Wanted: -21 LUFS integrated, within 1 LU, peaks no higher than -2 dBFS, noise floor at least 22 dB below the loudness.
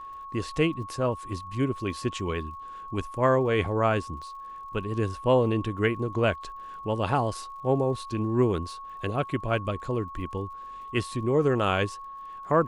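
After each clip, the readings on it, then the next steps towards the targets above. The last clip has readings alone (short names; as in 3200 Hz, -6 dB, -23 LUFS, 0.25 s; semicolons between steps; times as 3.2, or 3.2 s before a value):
ticks 46/s; steady tone 1100 Hz; tone level -38 dBFS; loudness -28.0 LUFS; peak -10.5 dBFS; loudness target -21.0 LUFS
-> de-click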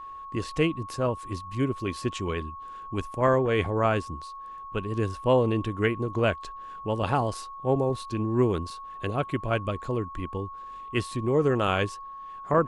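ticks 0/s; steady tone 1100 Hz; tone level -38 dBFS
-> notch 1100 Hz, Q 30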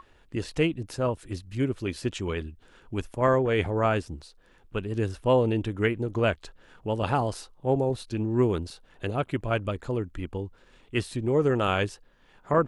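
steady tone none; loudness -28.0 LUFS; peak -9.5 dBFS; loudness target -21.0 LUFS
-> gain +7 dB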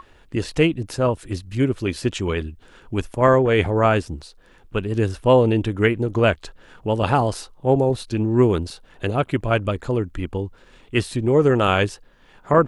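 loudness -21.0 LUFS; peak -2.5 dBFS; noise floor -52 dBFS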